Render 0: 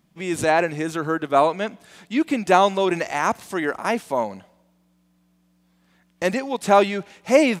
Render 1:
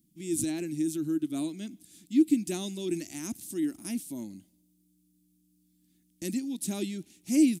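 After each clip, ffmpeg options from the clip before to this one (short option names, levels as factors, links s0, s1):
-af "firequalizer=gain_entry='entry(180,0);entry(310,9);entry(460,-22);entry(660,-21);entry(1000,-27);entry(2300,-11);entry(3500,-3);entry(9500,12)':delay=0.05:min_phase=1,volume=0.398"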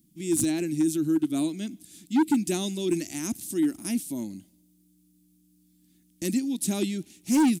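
-af "asoftclip=type=hard:threshold=0.0708,volume=1.88"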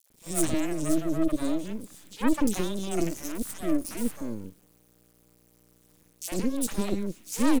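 -filter_complex "[0:a]acrusher=bits=7:dc=4:mix=0:aa=0.000001,aeval=exprs='max(val(0),0)':c=same,acrossover=split=630|3400[s0][s1][s2];[s1]adelay=60[s3];[s0]adelay=100[s4];[s4][s3][s2]amix=inputs=3:normalize=0,volume=1.5"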